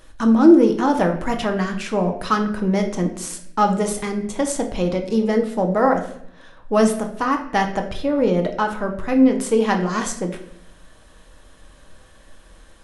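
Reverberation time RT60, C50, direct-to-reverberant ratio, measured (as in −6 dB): 0.70 s, 9.5 dB, 3.5 dB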